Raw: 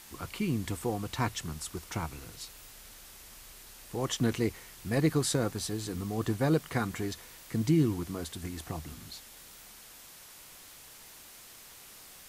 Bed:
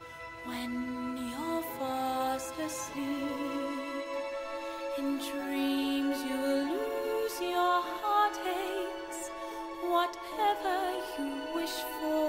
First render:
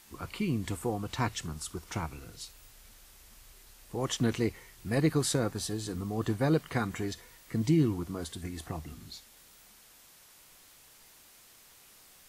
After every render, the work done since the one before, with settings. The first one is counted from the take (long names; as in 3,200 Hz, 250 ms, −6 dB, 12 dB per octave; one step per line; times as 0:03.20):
noise reduction from a noise print 6 dB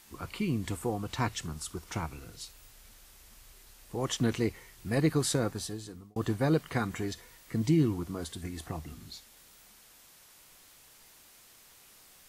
0:05.48–0:06.16: fade out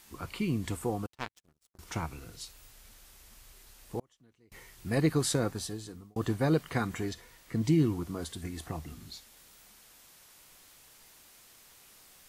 0:01.06–0:01.79: power curve on the samples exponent 3
0:03.99–0:04.52: gate with flip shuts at −24 dBFS, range −35 dB
0:07.09–0:07.66: high-shelf EQ 6,300 Hz −4.5 dB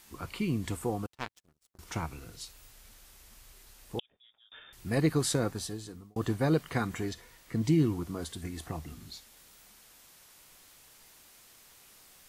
0:03.99–0:04.73: voice inversion scrambler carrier 3,600 Hz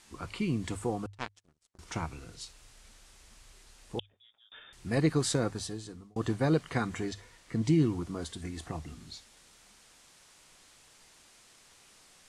low-pass filter 9,500 Hz 24 dB per octave
mains-hum notches 50/100 Hz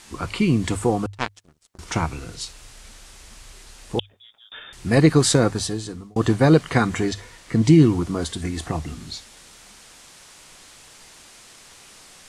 level +12 dB
brickwall limiter −3 dBFS, peak gain reduction 1 dB